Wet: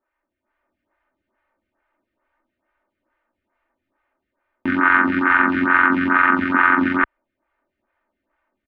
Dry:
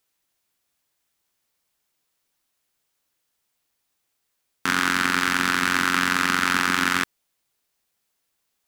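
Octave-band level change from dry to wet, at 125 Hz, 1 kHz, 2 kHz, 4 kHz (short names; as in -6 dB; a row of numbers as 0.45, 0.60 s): +1.0, +6.0, +5.5, -14.5 dB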